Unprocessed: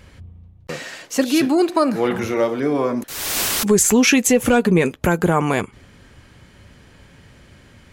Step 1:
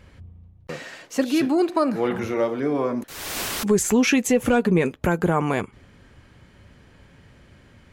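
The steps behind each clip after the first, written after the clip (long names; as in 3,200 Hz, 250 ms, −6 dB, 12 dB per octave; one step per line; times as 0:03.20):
high-shelf EQ 3,600 Hz −6.5 dB
level −3.5 dB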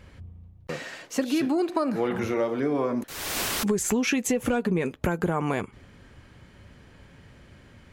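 downward compressor 6 to 1, threshold −21 dBFS, peak gain reduction 7.5 dB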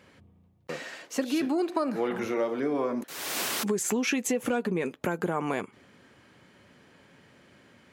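high-pass filter 200 Hz 12 dB per octave
level −2 dB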